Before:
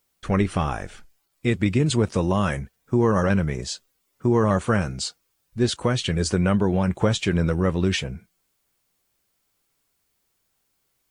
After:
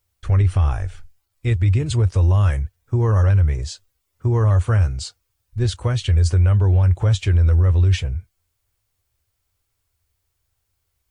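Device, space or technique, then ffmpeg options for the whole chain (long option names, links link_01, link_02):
car stereo with a boomy subwoofer: -af "lowshelf=frequency=130:width_type=q:width=3:gain=12,alimiter=limit=-7dB:level=0:latency=1:release=13,volume=-3dB"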